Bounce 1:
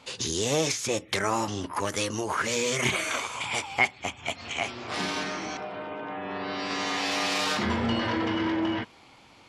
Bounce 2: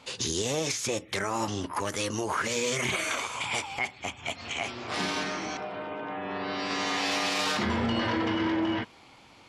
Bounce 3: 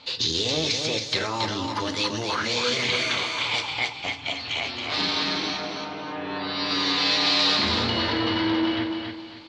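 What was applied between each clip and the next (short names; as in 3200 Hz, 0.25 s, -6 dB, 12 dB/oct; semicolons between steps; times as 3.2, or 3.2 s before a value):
limiter -18.5 dBFS, peak gain reduction 8.5 dB
synth low-pass 4200 Hz, resonance Q 4.6; on a send: feedback echo 0.275 s, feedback 31%, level -5 dB; on the sum: FDN reverb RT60 0.41 s, low-frequency decay 1.6×, high-frequency decay 0.85×, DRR 8.5 dB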